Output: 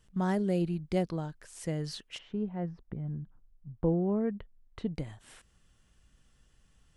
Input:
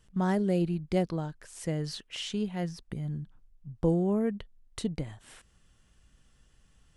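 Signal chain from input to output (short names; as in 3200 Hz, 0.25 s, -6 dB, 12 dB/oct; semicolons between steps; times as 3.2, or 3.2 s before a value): 2.17–4.91 LPF 1100 Hz -> 2300 Hz 12 dB/oct; gain -2 dB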